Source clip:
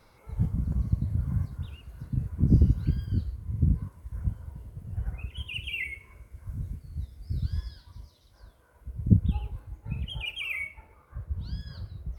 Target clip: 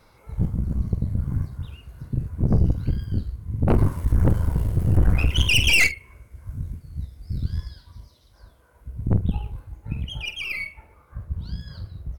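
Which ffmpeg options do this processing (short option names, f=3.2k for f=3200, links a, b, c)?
-filter_complex "[0:a]asplit=3[a][b][c];[a]afade=t=out:st=3.67:d=0.02[d];[b]aeval=exprs='0.224*sin(PI/2*4.47*val(0)/0.224)':c=same,afade=t=in:st=3.67:d=0.02,afade=t=out:st=5.86:d=0.02[e];[c]afade=t=in:st=5.86:d=0.02[f];[d][e][f]amix=inputs=3:normalize=0,aeval=exprs='(tanh(11.2*val(0)+0.7)-tanh(0.7))/11.2':c=same,asplit=2[g][h];[h]adelay=47,volume=-13dB[i];[g][i]amix=inputs=2:normalize=0,volume=7dB"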